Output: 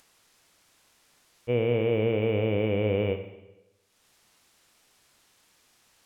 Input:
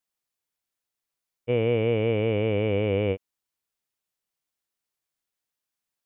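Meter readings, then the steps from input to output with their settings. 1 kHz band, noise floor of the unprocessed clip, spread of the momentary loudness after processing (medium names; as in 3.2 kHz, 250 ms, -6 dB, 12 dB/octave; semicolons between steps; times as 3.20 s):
-1.5 dB, under -85 dBFS, 10 LU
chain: upward compressor, threshold -41 dBFS; Schroeder reverb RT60 1 s, combs from 33 ms, DRR 8 dB; decimation joined by straight lines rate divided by 2×; trim -2 dB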